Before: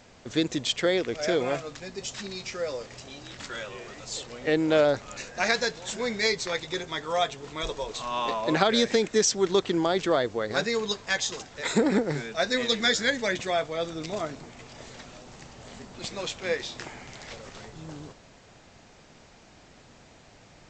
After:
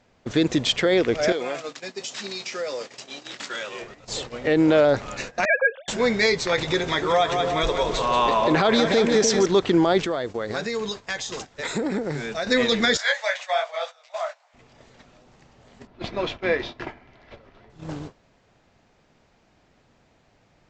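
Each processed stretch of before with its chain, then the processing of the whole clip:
1.32–3.82 HPF 240 Hz + high shelf 2600 Hz +9.5 dB + compressor 3:1, threshold -36 dBFS
5.45–5.88 sine-wave speech + HPF 710 Hz 6 dB/oct
6.58–9.46 split-band echo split 590 Hz, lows 0.297 s, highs 0.179 s, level -7.5 dB + upward compressor, threshold -27 dBFS
10.04–12.47 high shelf 7500 Hz +11 dB + compressor 3:1, threshold -35 dBFS
12.97–14.54 steep high-pass 570 Hz 72 dB/oct + detuned doubles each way 40 cents
15.87–17.7 air absorption 210 m + comb 3 ms, depth 31%
whole clip: gate -40 dBFS, range -16 dB; LPF 3200 Hz 6 dB/oct; limiter -19 dBFS; gain +9 dB

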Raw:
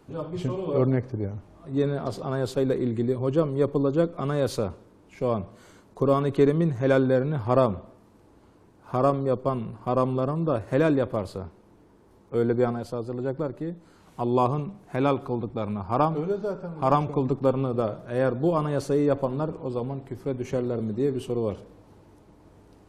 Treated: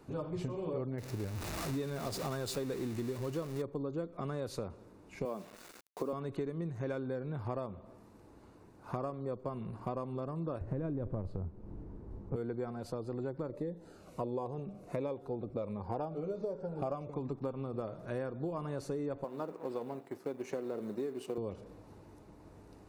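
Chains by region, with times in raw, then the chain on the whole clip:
0.98–3.62 zero-crossing step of -33 dBFS + high shelf 2000 Hz +8.5 dB
5.25–6.13 HPF 200 Hz 24 dB/oct + requantised 8-bit, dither none
10.61–12.36 tilt -4.5 dB/oct + compressor, threshold -15 dBFS
13.49–17.1 bell 530 Hz +10.5 dB 0.76 oct + cascading phaser falling 1.4 Hz
19.24–21.38 G.711 law mismatch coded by A + HPF 280 Hz
whole clip: compressor 10:1, threshold -32 dBFS; notch 3200 Hz, Q 9.8; gain -2 dB

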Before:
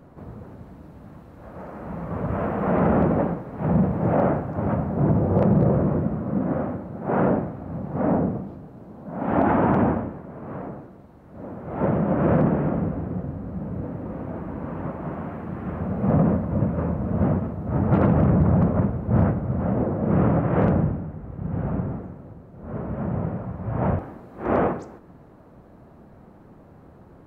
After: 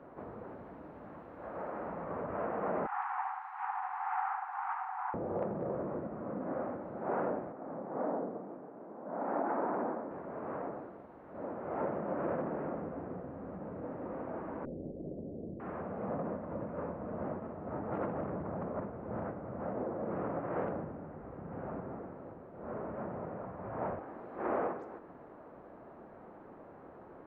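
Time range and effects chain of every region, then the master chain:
2.86–5.14 brick-wall FIR high-pass 730 Hz + echo 72 ms -6.5 dB
7.52–10.11 BPF 220–2400 Hz + air absorption 390 m
14.65–15.6 minimum comb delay 0.56 ms + steep low-pass 620 Hz 48 dB/oct + tilt -2 dB/oct
whole clip: compressor 2.5:1, threshold -35 dBFS; three-band isolator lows -16 dB, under 290 Hz, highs -22 dB, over 2600 Hz; gain +1 dB

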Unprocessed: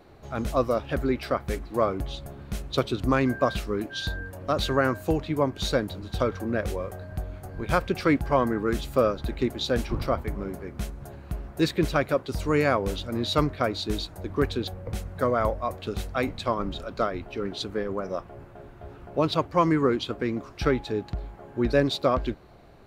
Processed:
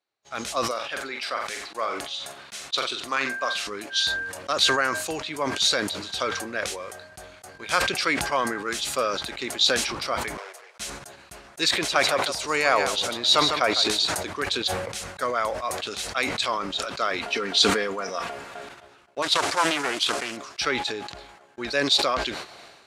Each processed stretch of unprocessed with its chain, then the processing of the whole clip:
0.71–3.67 LPF 1300 Hz 6 dB/oct + tilt +3.5 dB/oct + flutter echo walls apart 7.6 m, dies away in 0.26 s
10.37–10.8 minimum comb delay 8.3 ms + elliptic high-pass 420 Hz + compressor, threshold -41 dBFS
11.77–14.06 bell 760 Hz +6.5 dB 1 oct + echo 0.152 s -11 dB
17.18–18.69 comb 4.3 ms, depth 42% + fast leveller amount 50%
19.22–20.37 CVSD 64 kbps + low shelf 260 Hz -7.5 dB + Doppler distortion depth 0.65 ms
whole clip: weighting filter ITU-R 468; gate -45 dBFS, range -30 dB; sustainer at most 46 dB/s

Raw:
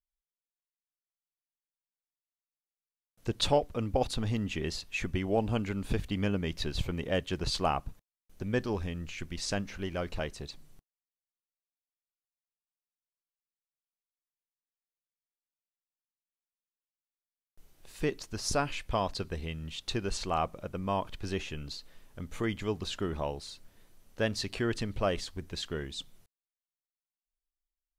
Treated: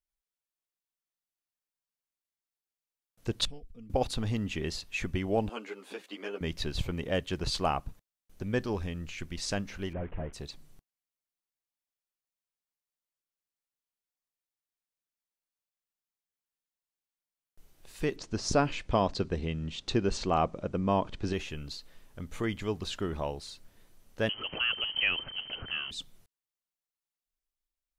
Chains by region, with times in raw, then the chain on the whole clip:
3.45–3.9 passive tone stack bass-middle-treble 10-0-1 + comb 4.3 ms, depth 73%
5.49–6.41 HPF 340 Hz 24 dB/oct + high shelf 8200 Hz -4.5 dB + ensemble effect
9.93–10.33 delta modulation 16 kbps, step -46.5 dBFS + air absorption 410 m
18.16–21.33 LPF 7700 Hz 24 dB/oct + bell 270 Hz +7 dB 2.7 oct
24.29–25.91 switching spikes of -27.5 dBFS + inverted band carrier 3100 Hz + upward compressor, threshold -34 dBFS
whole clip: dry

